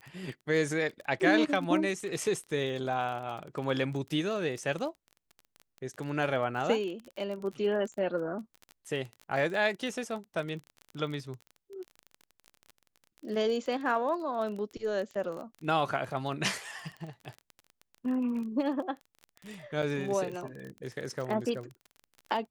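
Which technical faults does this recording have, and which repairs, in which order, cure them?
crackle 26/s -36 dBFS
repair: de-click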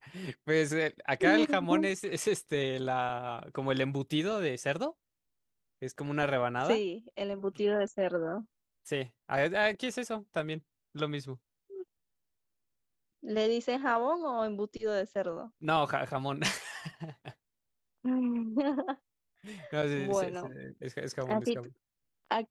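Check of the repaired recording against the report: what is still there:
none

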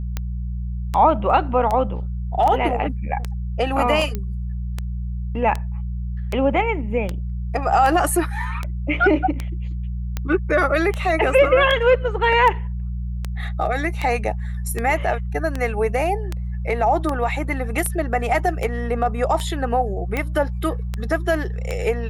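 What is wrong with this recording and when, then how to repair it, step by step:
hum 60 Hz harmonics 3 -26 dBFS
tick 78 rpm -11 dBFS
4.15 pop -13 dBFS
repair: de-click; de-hum 60 Hz, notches 3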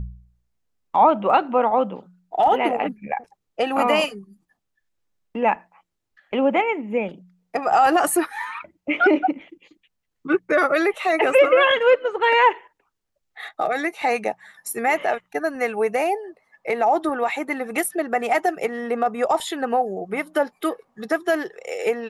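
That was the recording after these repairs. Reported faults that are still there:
none

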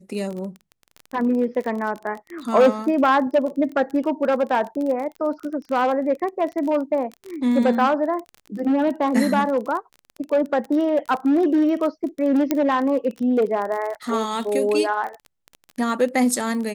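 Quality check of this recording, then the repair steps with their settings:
crackle 25/s -28 dBFS
12.51 pop -7 dBFS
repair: de-click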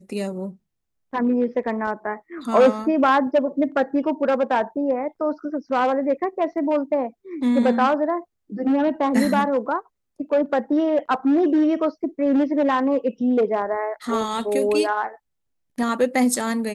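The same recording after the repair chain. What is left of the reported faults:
none

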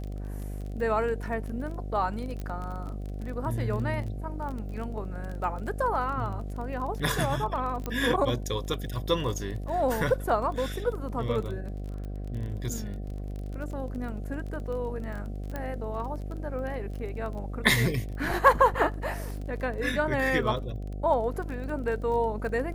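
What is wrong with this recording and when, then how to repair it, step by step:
buzz 50 Hz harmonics 15 -35 dBFS
crackle 26/s -35 dBFS
2.4 pop -24 dBFS
7.86 pop -18 dBFS
15.56 pop -20 dBFS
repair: de-click; de-hum 50 Hz, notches 15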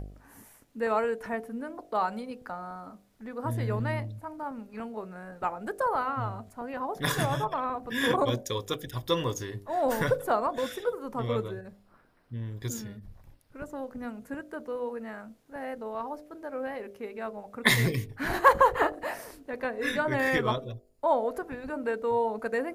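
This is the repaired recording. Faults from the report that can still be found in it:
none

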